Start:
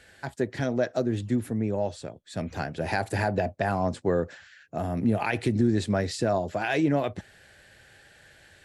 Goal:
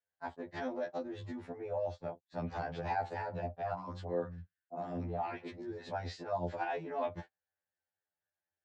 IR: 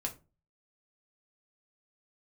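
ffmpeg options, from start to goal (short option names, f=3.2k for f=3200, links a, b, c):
-filter_complex "[0:a]lowshelf=f=160:g=6.5,acompressor=threshold=-24dB:ratio=16,lowpass=f=5.8k:w=0.5412,lowpass=f=5.8k:w=1.3066,acrossover=split=420|1900[a][b][c];[a]acompressor=threshold=-31dB:ratio=4[d];[b]acompressor=threshold=-36dB:ratio=4[e];[c]acompressor=threshold=-42dB:ratio=4[f];[d][e][f]amix=inputs=3:normalize=0,highpass=72,alimiter=level_in=7dB:limit=-24dB:level=0:latency=1:release=187,volume=-7dB,agate=range=-45dB:threshold=-43dB:ratio=16:detection=peak,equalizer=f=860:t=o:w=1.7:g=15,asettb=1/sr,asplit=3[g][h][i];[g]atrim=end=3.744[j];[h]atrim=start=3.74:end=5.91,asetpts=PTS-STARTPTS,afade=t=in:d=0.004:c=qsin,afade=t=out:st=2.166:d=0.004:c=qsin,acrossover=split=160|950[k][l][m];[m]adelay=40[n];[k]adelay=160[o];[o][l][n]amix=inputs=3:normalize=0,atrim=end_sample=95697[p];[i]atrim=start=5.906[q];[j][p]acrossfade=d=0.004:c1=hsin:c2=qsin[r];[r][q]acrossfade=d=0.004:c1=qsin:c2=hsin,afftfilt=real='re*2*eq(mod(b,4),0)':imag='im*2*eq(mod(b,4),0)':win_size=2048:overlap=0.75,volume=-2.5dB"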